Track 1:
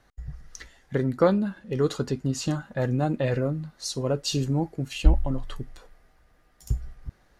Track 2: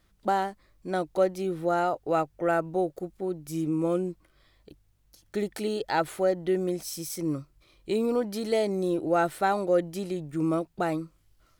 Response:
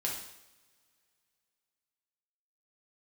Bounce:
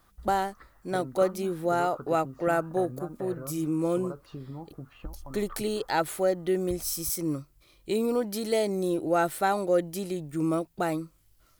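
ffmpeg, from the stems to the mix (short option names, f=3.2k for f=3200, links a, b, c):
-filter_complex "[0:a]lowpass=f=1.2k:t=q:w=5.3,acompressor=threshold=-29dB:ratio=5,volume=-8.5dB[a];[1:a]volume=-0.5dB[b];[a][b]amix=inputs=2:normalize=0,highshelf=f=8.3k:g=11.5"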